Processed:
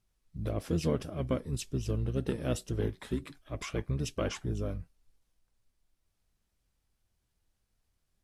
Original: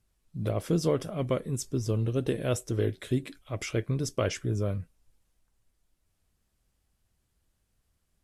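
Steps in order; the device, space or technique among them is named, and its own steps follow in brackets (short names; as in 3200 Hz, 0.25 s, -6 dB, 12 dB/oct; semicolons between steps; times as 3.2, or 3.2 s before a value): octave pedal (harmoniser -12 st -3 dB); gain -5.5 dB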